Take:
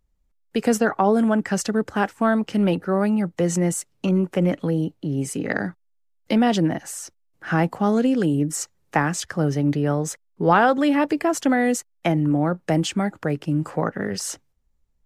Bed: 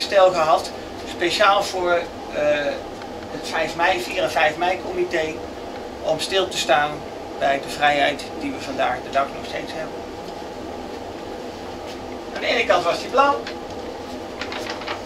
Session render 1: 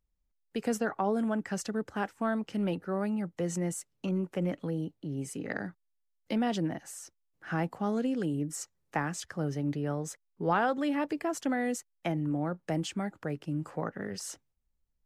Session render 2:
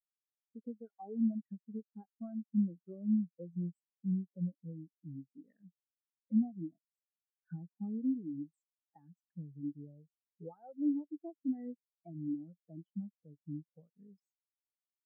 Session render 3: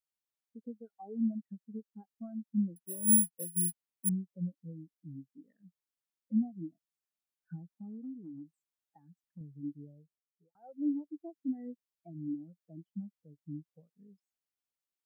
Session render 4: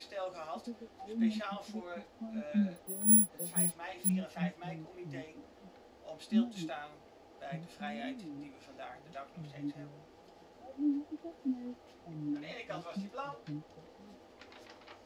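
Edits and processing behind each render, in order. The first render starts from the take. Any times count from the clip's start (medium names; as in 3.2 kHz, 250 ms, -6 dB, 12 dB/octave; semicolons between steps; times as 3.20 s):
trim -11 dB
compression 4:1, threshold -35 dBFS, peak gain reduction 11.5 dB; spectral contrast expander 4:1
2.76–4.09 s: careless resampling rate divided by 4×, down filtered, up zero stuff; 7.59–9.41 s: compression 2.5:1, threshold -45 dBFS; 9.91–10.55 s: studio fade out
add bed -26 dB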